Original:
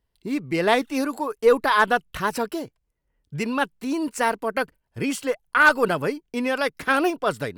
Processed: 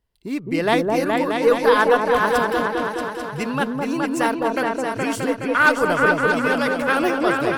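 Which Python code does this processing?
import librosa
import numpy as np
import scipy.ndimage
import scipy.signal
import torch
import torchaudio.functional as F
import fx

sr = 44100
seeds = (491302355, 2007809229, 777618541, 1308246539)

y = fx.echo_opening(x, sr, ms=210, hz=750, octaves=2, feedback_pct=70, wet_db=0)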